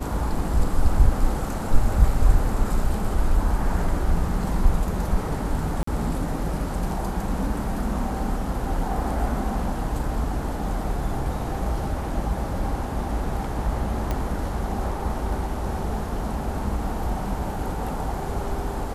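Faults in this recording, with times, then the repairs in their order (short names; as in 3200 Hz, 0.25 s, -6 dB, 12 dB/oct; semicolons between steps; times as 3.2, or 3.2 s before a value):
5.83–5.87 gap 44 ms
14.11 pop -13 dBFS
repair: de-click; interpolate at 5.83, 44 ms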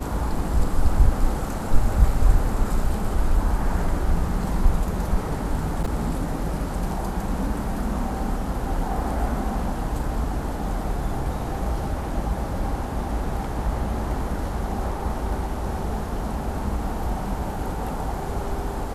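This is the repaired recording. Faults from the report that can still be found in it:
none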